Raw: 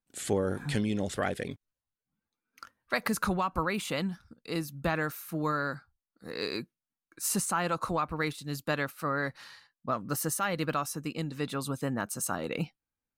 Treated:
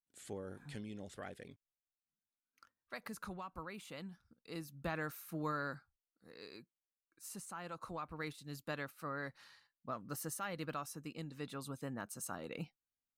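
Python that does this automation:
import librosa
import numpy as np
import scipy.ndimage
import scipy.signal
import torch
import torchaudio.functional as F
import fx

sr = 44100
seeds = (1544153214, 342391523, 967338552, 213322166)

y = fx.gain(x, sr, db=fx.line((3.91, -17.0), (5.15, -8.5), (5.74, -8.5), (6.38, -19.0), (7.37, -19.0), (8.29, -11.5)))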